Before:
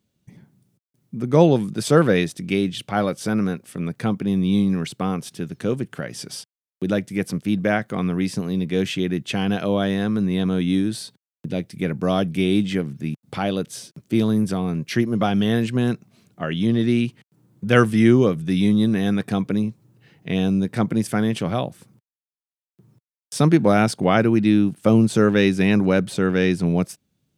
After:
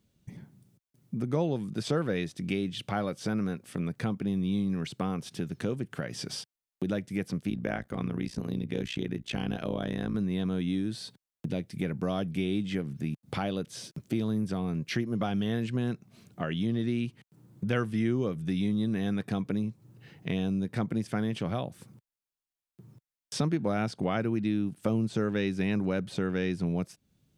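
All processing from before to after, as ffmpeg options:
ffmpeg -i in.wav -filter_complex "[0:a]asettb=1/sr,asplit=3[link_01][link_02][link_03];[link_01]atrim=end=7.504[link_04];[link_02]atrim=start=7.5:end=10.15,asetpts=PTS-STARTPTS,afade=type=in:duration=0.004:curve=qsin,afade=type=out:start_time=2.646:duration=0.004:curve=qsin,tremolo=f=59:d=0.889,highpass=43[link_05];[link_03]atrim=start=10.146[link_06];[link_04][link_05]acrossfade=duration=0.004:curve1=hsin:curve2=qsin[link_07];[link_07][link_06]acrossfade=duration=0.004:curve1=qsin:curve2=hsin,acrossover=split=6200[link_08][link_09];[link_09]acompressor=threshold=-47dB:ratio=4:attack=1:release=60[link_10];[link_08][link_10]amix=inputs=2:normalize=0,lowshelf=frequency=62:gain=10.5,acompressor=threshold=-32dB:ratio=2.5" out.wav

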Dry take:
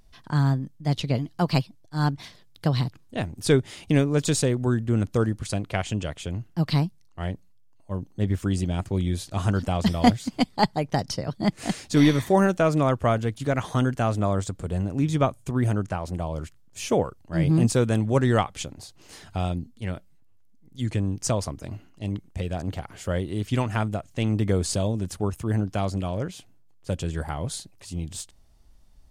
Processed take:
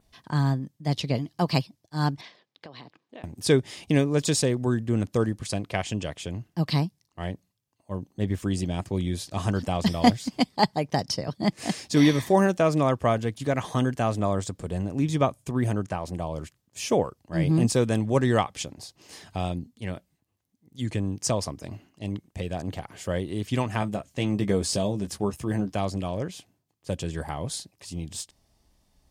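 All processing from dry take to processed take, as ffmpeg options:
ffmpeg -i in.wav -filter_complex "[0:a]asettb=1/sr,asplit=3[link_01][link_02][link_03];[link_01]atrim=end=2.214[link_04];[link_02]atrim=start=2.21:end=3.24,asetpts=PTS-STARTPTS,afade=type=in:duration=0.004:curve=qsin,afade=type=out:start_time=1.026:duration=0.004:curve=qsin,highpass=320,lowpass=3400,acompressor=threshold=-39dB:ratio=8:attack=3.2:release=140:knee=1:detection=peak[link_05];[link_03]atrim=start=3.236[link_06];[link_04][link_05]acrossfade=duration=0.004:curve1=hsin:curve2=qsin[link_07];[link_07][link_06]acrossfade=duration=0.004:curve1=qsin:curve2=hsin,asettb=1/sr,asplit=3[link_08][link_09][link_10];[link_08]atrim=end=23.804[link_11];[link_09]atrim=start=23.8:end=25.72,asetpts=PTS-STARTPTS,afade=type=in:duration=0.004:curve=qsin,afade=type=out:start_time=1.916:duration=0.004:curve=qsin,deesser=0.45,asplit=2[link_12][link_13];[link_13]adelay=15,volume=-7dB[link_14];[link_12][link_14]amix=inputs=2:normalize=0,atrim=end_sample=84672[link_15];[link_10]atrim=start=25.716[link_16];[link_11][link_15]acrossfade=duration=0.004:curve1=hsin:curve2=qsin[link_17];[link_17][link_16]acrossfade=duration=0.004:curve1=qsin:curve2=hsin,highpass=frequency=120:poles=1,bandreject=frequency=1400:width=8.5,adynamicequalizer=threshold=0.00282:dfrequency=5200:dqfactor=5.5:tfrequency=5200:tqfactor=5.5:attack=5:release=100:ratio=0.375:range=2.5:mode=boostabove:tftype=bell" out.wav

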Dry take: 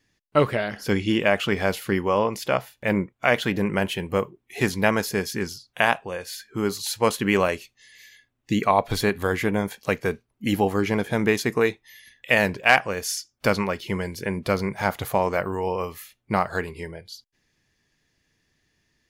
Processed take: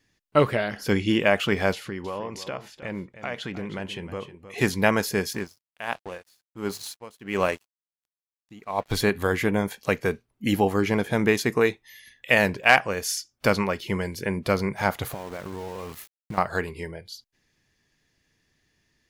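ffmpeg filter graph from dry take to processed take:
ffmpeg -i in.wav -filter_complex "[0:a]asettb=1/sr,asplit=3[link_01][link_02][link_03];[link_01]atrim=end=1.734[link_04];[link_02]atrim=start=1.73:end=4.58,asetpts=PTS-STARTPTS,afade=type=in:duration=0.004:curve=qsin,afade=type=out:start_time=2.846:duration=0.004:curve=qsin,lowpass=7500,acompressor=threshold=-33dB:ratio=2.5:attack=3.2:release=140:knee=1:detection=peak,aecho=1:1:312:0.237,atrim=end_sample=125685[link_05];[link_03]atrim=start=4.576[link_06];[link_04][link_05]acrossfade=duration=0.004:curve1=hsin:curve2=qsin[link_07];[link_07][link_06]acrossfade=duration=0.004:curve1=qsin:curve2=hsin,asettb=1/sr,asplit=3[link_08][link_09][link_10];[link_08]atrim=end=5.334[link_11];[link_09]atrim=start=5.33:end=8.93,asetpts=PTS-STARTPTS,afade=type=in:duration=0.004:curve=qsin,afade=type=out:start_time=3.596:duration=0.004:curve=qsin,aeval=exprs='sgn(val(0))*max(abs(val(0))-0.0112,0)':channel_layout=same,aeval=exprs='val(0)*pow(10,-23*(0.5-0.5*cos(2*PI*1.4*n/s))/20)':channel_layout=same[link_12];[link_10]atrim=start=8.926[link_13];[link_11][link_12]acrossfade=duration=0.004:curve1=hsin:curve2=qsin[link_14];[link_14][link_13]acrossfade=duration=0.004:curve1=qsin:curve2=hsin,asettb=1/sr,asplit=3[link_15][link_16][link_17];[link_15]atrim=end=15.054[link_18];[link_16]atrim=start=15.05:end=16.38,asetpts=PTS-STARTPTS,afade=type=in:duration=0.004:curve=qsin,afade=type=out:start_time=1.326:duration=0.004:curve=qsin,equalizer=frequency=150:width=0.53:gain=5.5,acompressor=threshold=-30dB:ratio=12:attack=3.2:release=140:knee=1:detection=peak,aeval=exprs='val(0)*gte(abs(val(0)),0.0106)':channel_layout=same[link_19];[link_17]atrim=start=16.376[link_20];[link_18][link_19]acrossfade=duration=0.004:curve1=hsin:curve2=qsin[link_21];[link_21][link_20]acrossfade=duration=0.004:curve1=qsin:curve2=hsin" out.wav

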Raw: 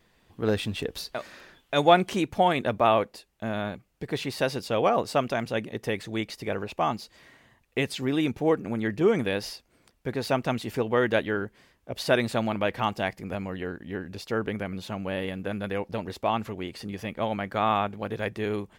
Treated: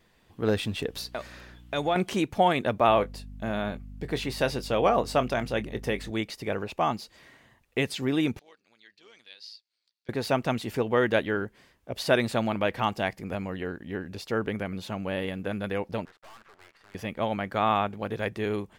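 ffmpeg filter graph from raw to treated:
ffmpeg -i in.wav -filter_complex "[0:a]asettb=1/sr,asplit=3[link_01][link_02][link_03];[link_01]atrim=end=0.924[link_04];[link_02]atrim=start=0.92:end=1.96,asetpts=PTS-STARTPTS,afade=type=in:duration=0.004:curve=qsin,afade=type=out:start_time=1.036:duration=0.004:curve=qsin,acompressor=threshold=-28dB:ratio=2:attack=3.2:release=140:knee=1:detection=peak,aeval=exprs='val(0)+0.00355*(sin(2*PI*60*n/s)+sin(2*PI*2*60*n/s)/2+sin(2*PI*3*60*n/s)/3+sin(2*PI*4*60*n/s)/4+sin(2*PI*5*60*n/s)/5)':channel_layout=same[link_05];[link_03]atrim=start=1.956[link_06];[link_04][link_05]acrossfade=duration=0.004:curve1=hsin:curve2=qsin[link_07];[link_07][link_06]acrossfade=duration=0.004:curve1=qsin:curve2=hsin,asettb=1/sr,asplit=3[link_08][link_09][link_10];[link_08]atrim=end=2.884[link_11];[link_09]atrim=start=2.88:end=6.11,asetpts=PTS-STARTPTS,afade=type=in:duration=0.004:curve=qsin,afade=type=out:start_time=3.226:duration=0.004:curve=qsin,aeval=exprs='val(0)+0.00891*(sin(2*PI*50*n/s)+sin(2*PI*2*50*n/s)/2+sin(2*PI*3*50*n/s)/3+sin(2*PI*4*50*n/s)/4+sin(2*PI*5*50*n/s)/5)':channel_layout=same,asplit=2[link_12][link_13];[link_13]adelay=24,volume=-13.5dB[link_14];[link_12][link_14]amix=inputs=2:normalize=0,atrim=end_sample=142443[link_15];[link_10]atrim=start=6.106[link_16];[link_11][link_15]acrossfade=duration=0.004:curve1=hsin:curve2=qsin[link_17];[link_17][link_16]acrossfade=duration=0.004:curve1=qsin:curve2=hsin,asettb=1/sr,asplit=3[link_18][link_19][link_20];[link_18]atrim=end=8.394[link_21];[link_19]atrim=start=8.39:end=10.09,asetpts=PTS-STARTPTS,afade=type=in:duration=0.004:curve=qsin,afade=type=out:start_time=1.696:duration=0.004:curve=qsin,bandpass=frequency=4300:width_type=q:width=4.7,tremolo=f=110:d=0.519[link_22];[link_20]atrim=start=10.086[link_23];[link_21][link_22]acrossfade=duration=0.004:curve1=hsin:curve2=qsin[link_24];[link_24][link_23]acrossfade=duration=0.004:curve1=qsin:curve2=hsin,asettb=1/sr,asplit=3[link_25][link_26][link_27];[link_25]atrim=end=16.054[link_28];[link_26]atrim=start=16.05:end=16.95,asetpts=PTS-STARTPTS,afade=type=in:duration=0.004:curve=qsin,afade=type=out:start_time=0.896:duration=0.004:curve=qsin,acrusher=bits=6:dc=4:mix=0:aa=0.000001,bandpass=frequency=1500:width_type=q:width=1.7,aeval=exprs='(tanh(251*val(0)+0.65)-tanh(0.65))/251':channel_layout=same[link_29];[link_27]atrim=start=16.946[link_30];[link_28][link_29]acrossfade=duration=0.004:curve1=hsin:curve2=qsin[link_31];[link_31][link_30]acrossfade=duration=0.004:curve1=qsin:curve2=hsin" out.wav

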